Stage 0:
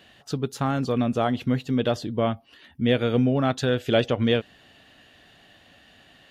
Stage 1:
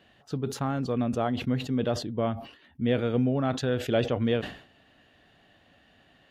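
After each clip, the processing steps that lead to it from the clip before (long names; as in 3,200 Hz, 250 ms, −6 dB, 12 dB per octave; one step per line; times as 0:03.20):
high-shelf EQ 2,700 Hz −9 dB
level that may fall only so fast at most 110 dB per second
level −4 dB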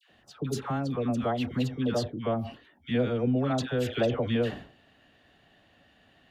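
all-pass dispersion lows, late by 98 ms, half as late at 1,100 Hz
level −1 dB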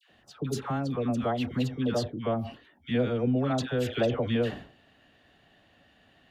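no processing that can be heard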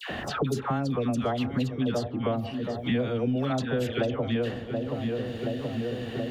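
feedback echo with a low-pass in the loop 727 ms, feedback 57%, low-pass 1,000 Hz, level −12 dB
multiband upward and downward compressor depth 100%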